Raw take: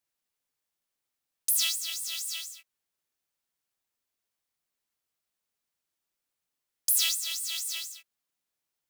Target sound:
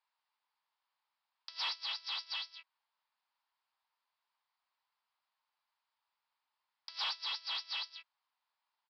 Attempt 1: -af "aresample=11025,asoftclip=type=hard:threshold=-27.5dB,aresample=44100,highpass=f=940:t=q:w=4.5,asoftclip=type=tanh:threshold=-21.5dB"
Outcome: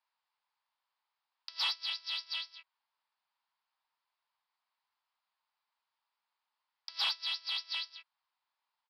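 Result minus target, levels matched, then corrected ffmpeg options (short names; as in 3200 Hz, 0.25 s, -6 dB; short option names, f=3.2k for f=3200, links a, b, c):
hard clip: distortion -5 dB
-af "aresample=11025,asoftclip=type=hard:threshold=-35dB,aresample=44100,highpass=f=940:t=q:w=4.5,asoftclip=type=tanh:threshold=-21.5dB"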